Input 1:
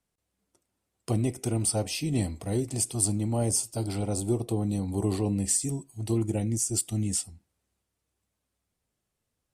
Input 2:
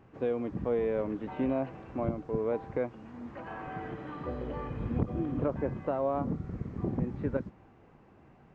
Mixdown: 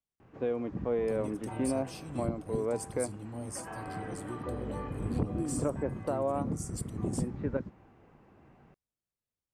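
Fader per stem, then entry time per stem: −15.0, −1.0 decibels; 0.00, 0.20 seconds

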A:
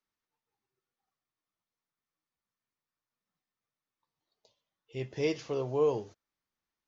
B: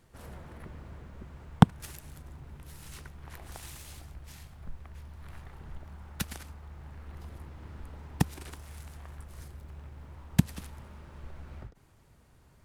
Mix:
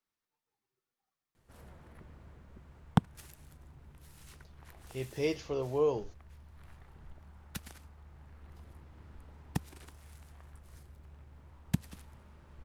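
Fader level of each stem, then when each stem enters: −1.5, −8.0 decibels; 0.00, 1.35 seconds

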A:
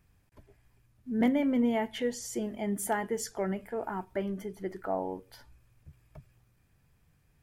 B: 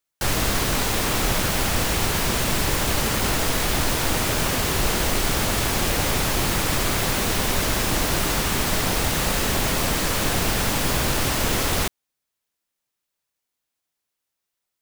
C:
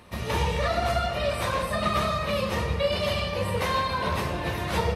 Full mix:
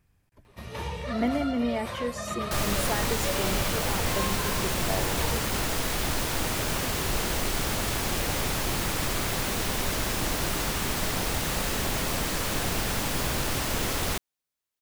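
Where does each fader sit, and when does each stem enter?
−1.0, −6.0, −8.5 decibels; 0.00, 2.30, 0.45 seconds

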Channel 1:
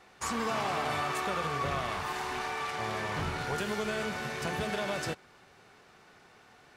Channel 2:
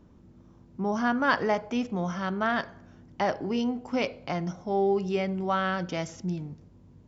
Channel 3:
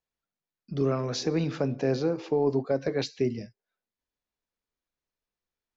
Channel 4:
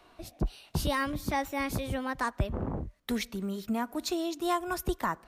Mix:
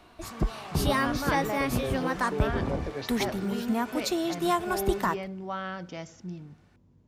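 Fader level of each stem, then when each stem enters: −10.0, −7.5, −8.0, +3.0 decibels; 0.00, 0.00, 0.00, 0.00 seconds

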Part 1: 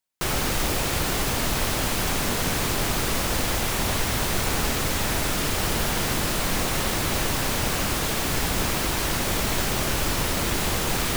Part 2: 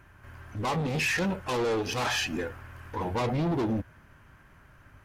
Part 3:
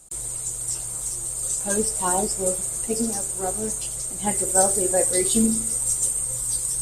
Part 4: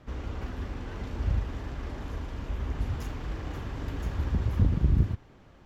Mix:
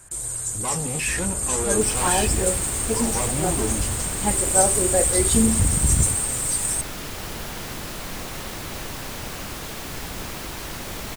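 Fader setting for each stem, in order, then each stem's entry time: −8.0, −0.5, +1.0, +2.0 decibels; 1.60, 0.00, 0.00, 1.00 seconds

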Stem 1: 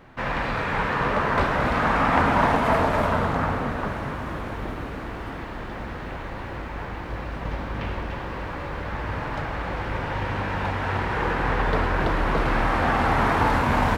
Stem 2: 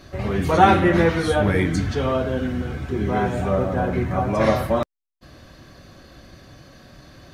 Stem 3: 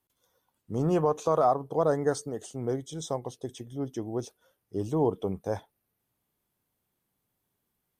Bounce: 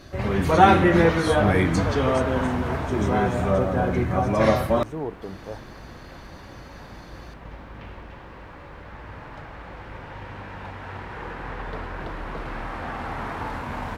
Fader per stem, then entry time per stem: −10.5, −0.5, −5.5 decibels; 0.00, 0.00, 0.00 seconds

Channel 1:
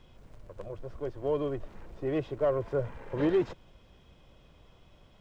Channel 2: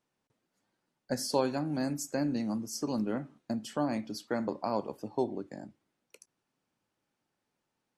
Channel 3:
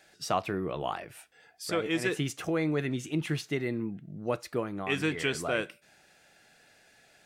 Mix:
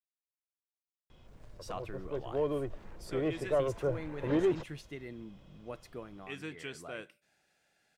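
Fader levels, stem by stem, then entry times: −2.0 dB, muted, −13.0 dB; 1.10 s, muted, 1.40 s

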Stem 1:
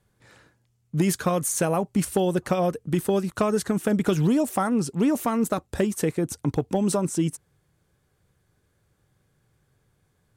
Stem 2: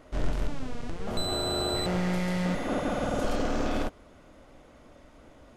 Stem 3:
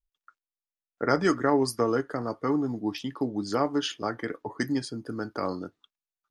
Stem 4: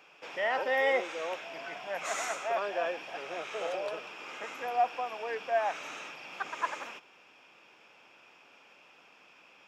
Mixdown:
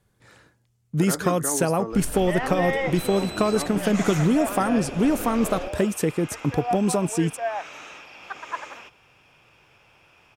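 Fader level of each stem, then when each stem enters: +1.0, −7.0, −7.5, +1.0 decibels; 0.00, 1.80, 0.00, 1.90 seconds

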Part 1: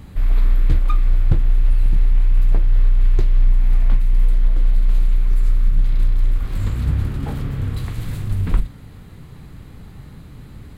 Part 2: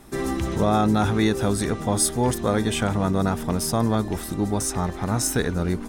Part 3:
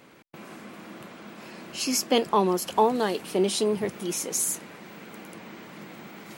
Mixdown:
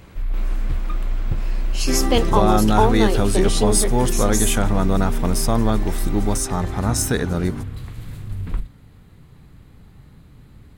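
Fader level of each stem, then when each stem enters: −7.5, +2.0, +3.0 decibels; 0.00, 1.75, 0.00 seconds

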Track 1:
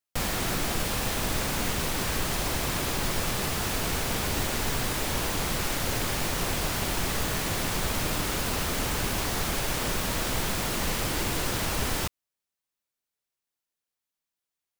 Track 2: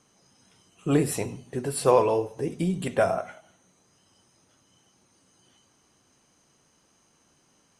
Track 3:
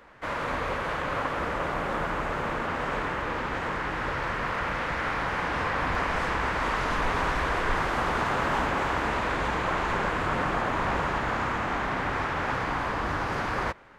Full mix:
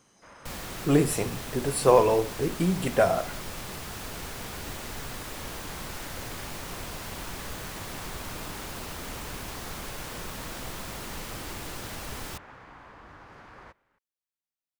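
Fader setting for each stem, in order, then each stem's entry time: −9.5, +1.0, −20.0 decibels; 0.30, 0.00, 0.00 seconds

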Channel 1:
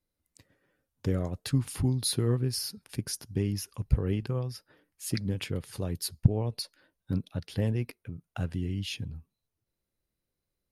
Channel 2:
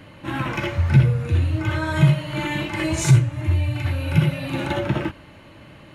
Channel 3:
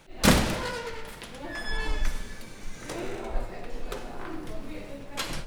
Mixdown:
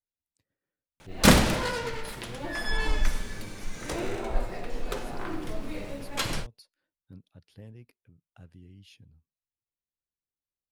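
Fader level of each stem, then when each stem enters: −18.5 dB, muted, +2.5 dB; 0.00 s, muted, 1.00 s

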